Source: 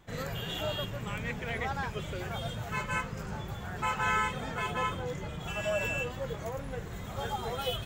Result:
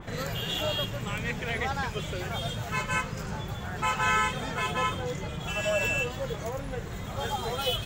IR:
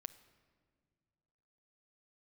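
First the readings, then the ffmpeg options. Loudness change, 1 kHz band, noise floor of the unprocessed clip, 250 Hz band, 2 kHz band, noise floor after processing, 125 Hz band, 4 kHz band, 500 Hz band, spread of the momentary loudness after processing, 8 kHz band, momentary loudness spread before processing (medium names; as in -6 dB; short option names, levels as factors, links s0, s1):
+4.0 dB, +3.5 dB, -41 dBFS, +3.5 dB, +4.5 dB, -37 dBFS, +3.5 dB, +6.5 dB, +3.0 dB, 9 LU, +7.0 dB, 8 LU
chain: -filter_complex "[0:a]acompressor=mode=upward:threshold=0.0158:ratio=2.5,asplit=2[s0][s1];[1:a]atrim=start_sample=2205,lowpass=8800[s2];[s1][s2]afir=irnorm=-1:irlink=0,volume=0.75[s3];[s0][s3]amix=inputs=2:normalize=0,adynamicequalizer=threshold=0.00631:dfrequency=2900:dqfactor=0.7:tfrequency=2900:tqfactor=0.7:attack=5:release=100:ratio=0.375:range=3:mode=boostabove:tftype=highshelf"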